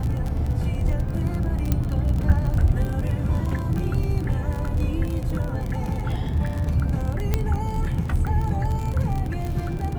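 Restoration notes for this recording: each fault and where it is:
surface crackle 38 per second −26 dBFS
0:01.72: click −9 dBFS
0:07.34: click −8 dBFS

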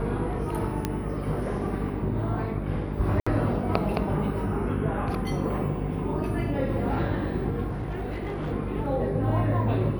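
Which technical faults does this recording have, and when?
mains buzz 50 Hz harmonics 9 −32 dBFS
0:00.85: click −12 dBFS
0:03.20–0:03.27: drop-out 65 ms
0:07.67–0:08.53: clipping −27 dBFS

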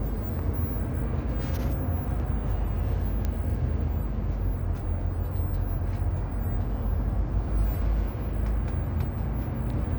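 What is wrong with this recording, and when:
0:03.25: click −16 dBFS

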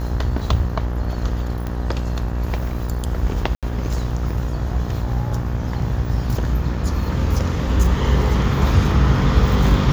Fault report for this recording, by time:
mains buzz 60 Hz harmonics 32 −24 dBFS
0:01.67: click −15 dBFS
0:03.55–0:03.63: drop-out 77 ms

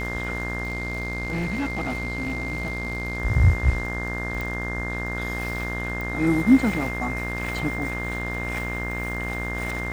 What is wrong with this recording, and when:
mains buzz 60 Hz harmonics 34 −31 dBFS
surface crackle 50 per second −32 dBFS
whistle 2,100 Hz −30 dBFS
0:00.63–0:03.18: clipping −22.5 dBFS
0:04.41: click
0:06.01: click

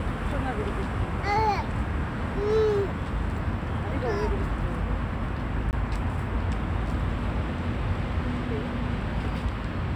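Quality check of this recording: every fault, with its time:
0:05.71–0:05.73: drop-out 19 ms

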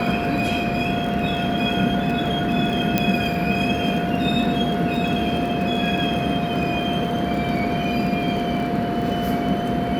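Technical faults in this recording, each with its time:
surface crackle 29 per second −28 dBFS
whistle 700 Hz −26 dBFS
0:02.98: click −4 dBFS

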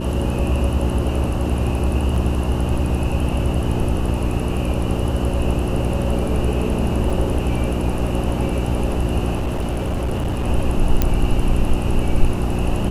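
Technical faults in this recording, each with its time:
mains hum 60 Hz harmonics 6 −23 dBFS
0:02.16: drop-out 3 ms
0:07.10: drop-out 2.9 ms
0:09.35–0:10.47: clipping −18 dBFS
0:11.02: click −3 dBFS

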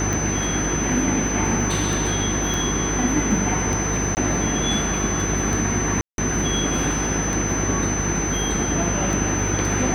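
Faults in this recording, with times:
mains buzz 50 Hz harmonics 9 −27 dBFS
scratch tick 33 1/3 rpm
whistle 6,100 Hz −26 dBFS
0:02.54: click
0:04.15–0:04.17: drop-out 19 ms
0:06.01–0:06.18: drop-out 172 ms

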